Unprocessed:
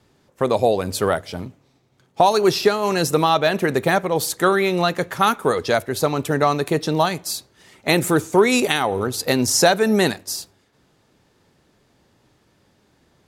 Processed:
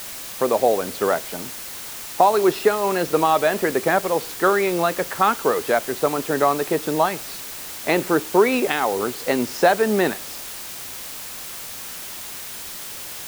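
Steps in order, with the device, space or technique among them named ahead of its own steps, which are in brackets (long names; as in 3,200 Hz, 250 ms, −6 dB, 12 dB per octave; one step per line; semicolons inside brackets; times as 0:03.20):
wax cylinder (band-pass filter 250–2,300 Hz; tape wow and flutter; white noise bed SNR 12 dB)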